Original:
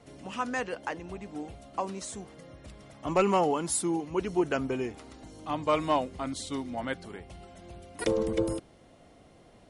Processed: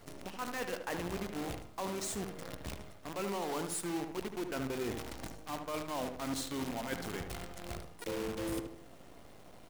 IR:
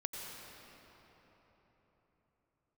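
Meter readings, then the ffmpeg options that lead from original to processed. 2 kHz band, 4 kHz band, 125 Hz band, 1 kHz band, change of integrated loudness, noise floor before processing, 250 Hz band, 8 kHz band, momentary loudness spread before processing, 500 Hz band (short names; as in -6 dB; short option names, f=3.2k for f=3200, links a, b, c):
-5.0 dB, -2.5 dB, -5.0 dB, -9.5 dB, -8.0 dB, -57 dBFS, -6.5 dB, -5.0 dB, 22 LU, -9.0 dB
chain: -filter_complex "[0:a]areverse,acompressor=threshold=-39dB:ratio=12,areverse,acrusher=bits=8:dc=4:mix=0:aa=0.000001,asplit=2[a][b];[b]adelay=75,lowpass=f=2k:p=1,volume=-6dB,asplit=2[c][d];[d]adelay=75,lowpass=f=2k:p=1,volume=0.42,asplit=2[e][f];[f]adelay=75,lowpass=f=2k:p=1,volume=0.42,asplit=2[g][h];[h]adelay=75,lowpass=f=2k:p=1,volume=0.42,asplit=2[i][j];[j]adelay=75,lowpass=f=2k:p=1,volume=0.42[k];[a][c][e][g][i][k]amix=inputs=6:normalize=0,volume=3.5dB"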